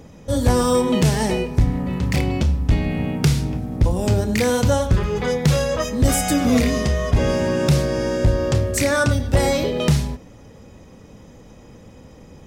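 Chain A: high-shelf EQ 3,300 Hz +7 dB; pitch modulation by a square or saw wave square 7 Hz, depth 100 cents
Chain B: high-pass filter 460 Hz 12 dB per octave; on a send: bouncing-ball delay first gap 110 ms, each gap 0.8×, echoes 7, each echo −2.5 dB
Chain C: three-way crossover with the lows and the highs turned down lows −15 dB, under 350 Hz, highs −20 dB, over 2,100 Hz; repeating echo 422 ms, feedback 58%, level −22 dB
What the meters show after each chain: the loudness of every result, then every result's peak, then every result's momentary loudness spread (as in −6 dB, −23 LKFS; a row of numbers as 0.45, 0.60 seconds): −19.0, −21.5, −25.5 LKFS; −2.5, −4.5, −10.0 dBFS; 5, 10, 10 LU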